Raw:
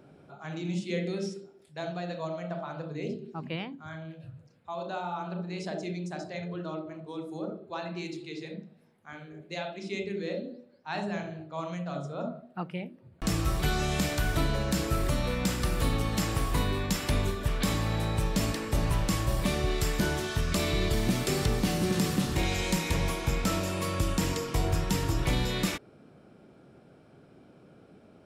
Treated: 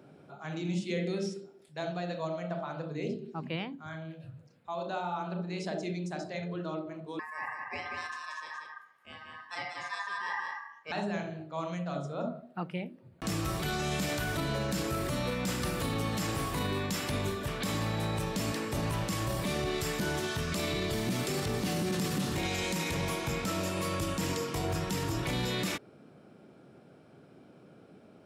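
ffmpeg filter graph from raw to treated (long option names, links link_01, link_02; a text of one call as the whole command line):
ffmpeg -i in.wav -filter_complex "[0:a]asettb=1/sr,asplit=3[link_01][link_02][link_03];[link_01]atrim=end=7.194[link_04];[link_02]atrim=start=7.19:end=10.92,asetpts=PTS-STARTPTS,afade=type=in:duration=0.004:curve=qsin,afade=type=out:start_time=3.726:duration=0.004:curve=qsin,equalizer=frequency=2300:width_type=o:width=0.31:gain=-6.5,aeval=exprs='val(0)*sin(2*PI*1400*n/s)':channel_layout=same,aecho=1:1:184:0.596,atrim=end_sample=164493[link_05];[link_03]atrim=start=10.916[link_06];[link_04][link_05]acrossfade=duration=0.004:curve1=hsin:curve2=qsin[link_07];[link_07][link_06]acrossfade=duration=0.004:curve1=qsin:curve2=hsin,highpass=100,alimiter=limit=-23.5dB:level=0:latency=1:release=20" out.wav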